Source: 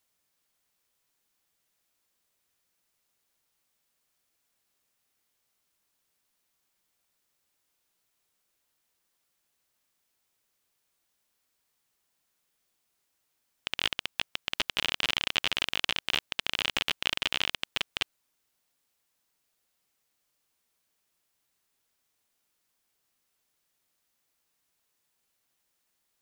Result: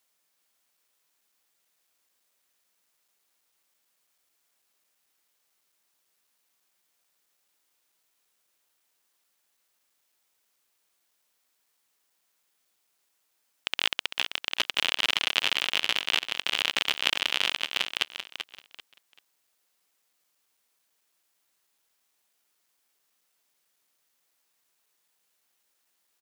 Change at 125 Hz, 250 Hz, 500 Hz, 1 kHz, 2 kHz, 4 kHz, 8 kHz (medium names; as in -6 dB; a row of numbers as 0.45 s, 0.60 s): -6.0 dB, -1.0 dB, +2.0 dB, +3.0 dB, +3.5 dB, +3.5 dB, +3.5 dB